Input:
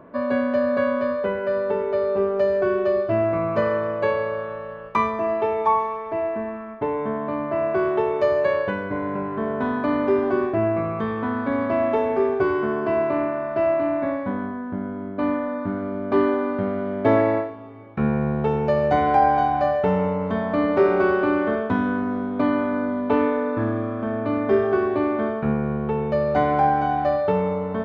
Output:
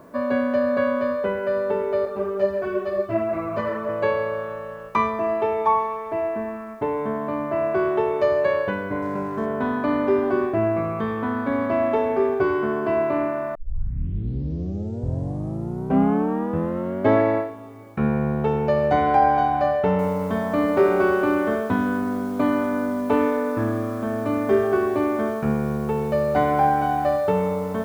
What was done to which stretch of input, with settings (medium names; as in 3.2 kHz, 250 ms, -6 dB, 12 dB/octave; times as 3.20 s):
2.05–3.89 s: three-phase chorus
9.02–9.46 s: median filter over 9 samples
13.55 s: tape start 3.60 s
19.99 s: noise floor step -67 dB -53 dB